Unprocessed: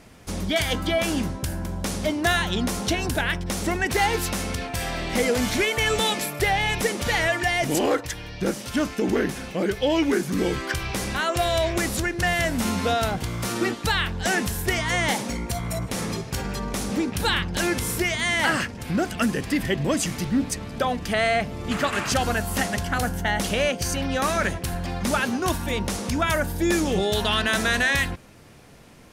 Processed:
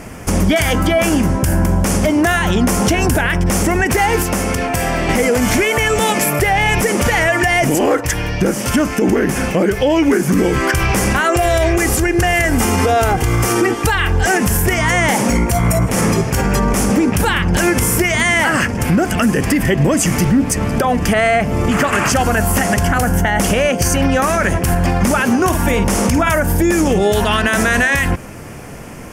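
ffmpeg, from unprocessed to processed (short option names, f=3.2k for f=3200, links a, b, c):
-filter_complex "[0:a]asettb=1/sr,asplit=3[a][b][c];[a]atrim=end=4.224[d];[b]atrim=start=4.22:end=5.09,asetpts=PTS-STARTPTS,afade=t=in:d=0.004:c=qsin,afade=t=out:st=0.866:d=0.004:c=qsin,acrossover=split=140|300|790[e][f][g][h];[e]acompressor=threshold=-42dB:ratio=3[i];[f]acompressor=threshold=-43dB:ratio=3[j];[g]acompressor=threshold=-40dB:ratio=3[k];[h]acompressor=threshold=-38dB:ratio=3[l];[i][j][k][l]amix=inputs=4:normalize=0[m];[c]atrim=start=5.086[n];[d][m]acrossfade=d=0.004:c1=hsin:c2=qsin[o];[o][n]acrossfade=d=0.004:c1=qsin:c2=hsin,asettb=1/sr,asplit=3[p][q][r];[p]atrim=end=11.244[s];[q]atrim=start=11.24:end=14.39,asetpts=PTS-STARTPTS,afade=t=in:d=0.004:c=qsin,afade=t=out:st=3.146:d=0.004:c=qsin,aecho=1:1:2.5:0.53,atrim=end_sample=138915[t];[r]atrim=start=14.386[u];[s][t]acrossfade=d=0.004:c1=hsin:c2=qsin[v];[v][u]acrossfade=d=0.004:c1=qsin:c2=hsin,asettb=1/sr,asplit=3[w][x][y];[w]atrim=end=25.434[z];[x]atrim=start=25.43:end=26.33,asetpts=PTS-STARTPTS,afade=t=in:d=0.004:c=qsin,afade=t=out:st=0.896:d=0.004:c=qsin,asplit=2[aa][ab];[ab]adelay=50,volume=-8.5dB[ac];[aa][ac]amix=inputs=2:normalize=0,atrim=end_sample=39690[ad];[y]atrim=start=26.326[ae];[z][ad]acrossfade=d=0.004:c1=hsin:c2=qsin[af];[af][ae]acrossfade=d=0.004:c1=qsin:c2=hsin,equalizer=f=3.9k:t=o:w=0.49:g=-14.5,acompressor=threshold=-26dB:ratio=6,alimiter=level_in=22dB:limit=-1dB:release=50:level=0:latency=1,volume=-4.5dB"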